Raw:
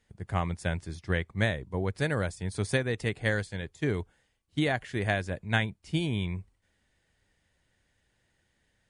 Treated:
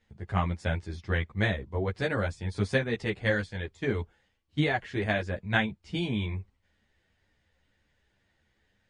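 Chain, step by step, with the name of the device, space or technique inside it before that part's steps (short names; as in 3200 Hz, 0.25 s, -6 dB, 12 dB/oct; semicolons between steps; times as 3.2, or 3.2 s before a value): string-machine ensemble chorus (ensemble effect; LPF 5100 Hz 12 dB/oct); gain +4 dB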